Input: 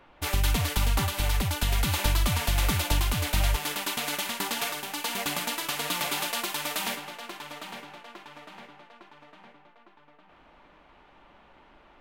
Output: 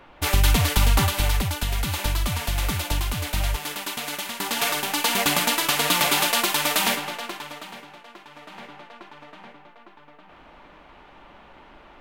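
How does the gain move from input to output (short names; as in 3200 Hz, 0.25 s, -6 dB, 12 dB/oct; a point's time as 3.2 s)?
1.08 s +6.5 dB
1.69 s 0 dB
4.33 s 0 dB
4.74 s +9 dB
7.14 s +9 dB
7.72 s +0.5 dB
8.28 s +0.5 dB
8.73 s +7.5 dB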